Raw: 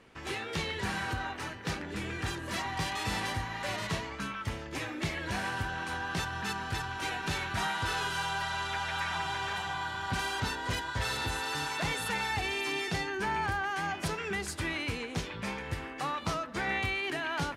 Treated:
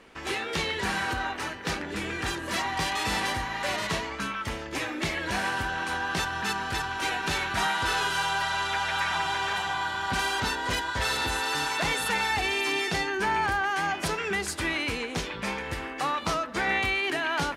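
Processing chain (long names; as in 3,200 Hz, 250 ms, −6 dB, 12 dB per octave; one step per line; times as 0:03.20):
parametric band 110 Hz −9 dB 1.3 octaves
level +6 dB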